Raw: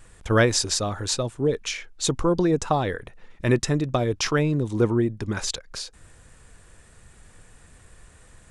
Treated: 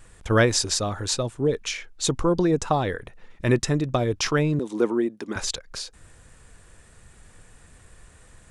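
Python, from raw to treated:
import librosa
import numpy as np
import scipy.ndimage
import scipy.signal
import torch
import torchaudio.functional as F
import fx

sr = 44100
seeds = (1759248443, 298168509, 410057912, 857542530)

y = fx.highpass(x, sr, hz=230.0, slope=24, at=(4.59, 5.36))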